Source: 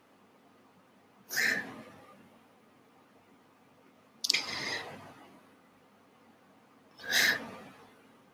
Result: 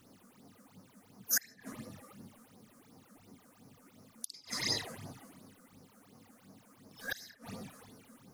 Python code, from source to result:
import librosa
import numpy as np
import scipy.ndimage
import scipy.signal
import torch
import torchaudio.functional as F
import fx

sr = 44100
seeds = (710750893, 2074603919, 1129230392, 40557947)

y = fx.gate_flip(x, sr, shuts_db=-22.0, range_db=-28)
y = fx.bass_treble(y, sr, bass_db=8, treble_db=12)
y = fx.phaser_stages(y, sr, stages=8, low_hz=100.0, high_hz=3100.0, hz=2.8, feedback_pct=45)